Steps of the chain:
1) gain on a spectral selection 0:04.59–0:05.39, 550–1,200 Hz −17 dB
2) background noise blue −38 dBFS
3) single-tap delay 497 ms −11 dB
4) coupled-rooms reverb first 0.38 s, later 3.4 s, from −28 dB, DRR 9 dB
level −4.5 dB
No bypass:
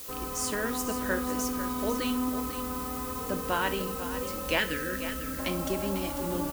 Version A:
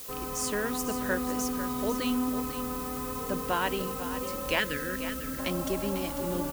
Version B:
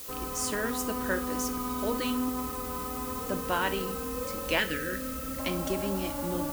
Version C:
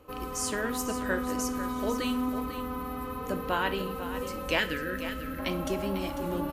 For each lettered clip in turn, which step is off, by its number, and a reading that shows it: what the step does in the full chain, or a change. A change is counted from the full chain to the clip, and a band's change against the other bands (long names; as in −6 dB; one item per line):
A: 4, echo-to-direct ratio −6.5 dB to −11.0 dB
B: 3, echo-to-direct ratio −6.5 dB to −9.0 dB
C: 2, 8 kHz band −2.0 dB